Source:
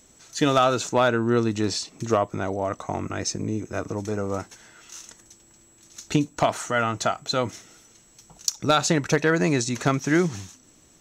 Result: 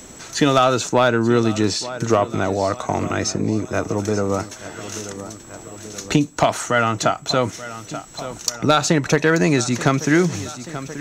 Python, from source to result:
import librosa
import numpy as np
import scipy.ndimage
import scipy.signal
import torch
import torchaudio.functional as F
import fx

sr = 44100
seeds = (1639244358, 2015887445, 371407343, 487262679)

p1 = 10.0 ** (-16.0 / 20.0) * np.tanh(x / 10.0 ** (-16.0 / 20.0))
p2 = x + (p1 * librosa.db_to_amplitude(-9.0))
p3 = fx.echo_feedback(p2, sr, ms=882, feedback_pct=48, wet_db=-18)
p4 = fx.band_squash(p3, sr, depth_pct=40)
y = p4 * librosa.db_to_amplitude(3.0)